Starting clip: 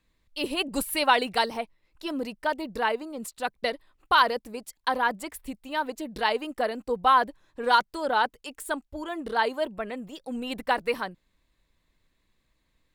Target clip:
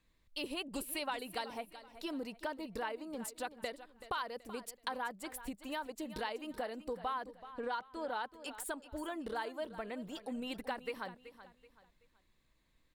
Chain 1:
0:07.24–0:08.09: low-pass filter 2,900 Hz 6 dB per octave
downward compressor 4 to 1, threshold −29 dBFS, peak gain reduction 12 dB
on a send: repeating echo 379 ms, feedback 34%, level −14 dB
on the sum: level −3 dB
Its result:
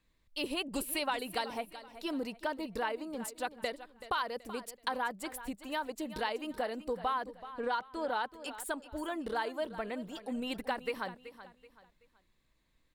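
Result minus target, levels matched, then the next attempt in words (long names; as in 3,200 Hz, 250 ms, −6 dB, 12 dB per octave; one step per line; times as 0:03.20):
downward compressor: peak gain reduction −5 dB
0:07.24–0:08.09: low-pass filter 2,900 Hz 6 dB per octave
downward compressor 4 to 1, threshold −35.5 dBFS, peak gain reduction 17 dB
on a send: repeating echo 379 ms, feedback 34%, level −14 dB
on the sum: level −3 dB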